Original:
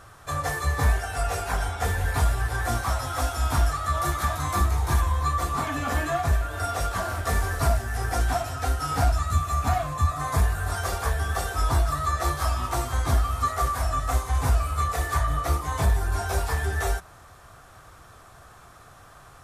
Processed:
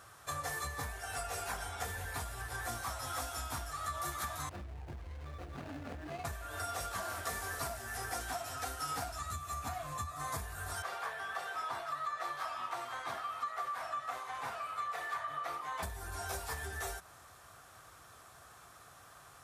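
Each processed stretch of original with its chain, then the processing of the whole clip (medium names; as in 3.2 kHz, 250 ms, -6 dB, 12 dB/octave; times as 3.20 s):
4.49–6.25 s: median filter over 41 samples + low-pass 4 kHz 6 dB/octave + compression 4:1, threshold -29 dBFS
7.01–9.22 s: bass shelf 120 Hz -7.5 dB + hard clipper -15.5 dBFS
10.82–15.83 s: high-pass 120 Hz 24 dB/octave + three-band isolator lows -13 dB, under 530 Hz, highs -17 dB, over 3.7 kHz
whole clip: high-pass 51 Hz; compression, threshold -28 dBFS; tilt EQ +1.5 dB/octave; trim -7 dB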